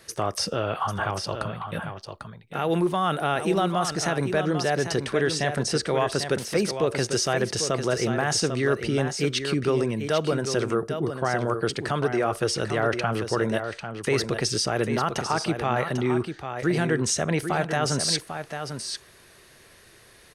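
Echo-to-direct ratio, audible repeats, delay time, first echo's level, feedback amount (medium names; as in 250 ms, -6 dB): -8.0 dB, 1, 796 ms, -8.0 dB, no regular repeats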